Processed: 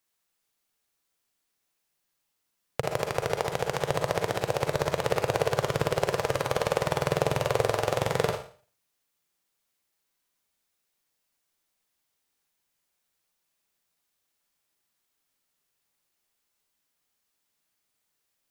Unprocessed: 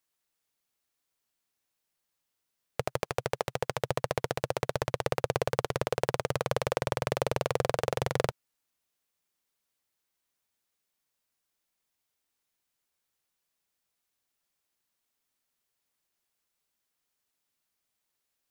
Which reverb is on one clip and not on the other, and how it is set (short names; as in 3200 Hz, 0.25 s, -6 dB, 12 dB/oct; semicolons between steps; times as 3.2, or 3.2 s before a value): Schroeder reverb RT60 0.43 s, DRR 2.5 dB; gain +2 dB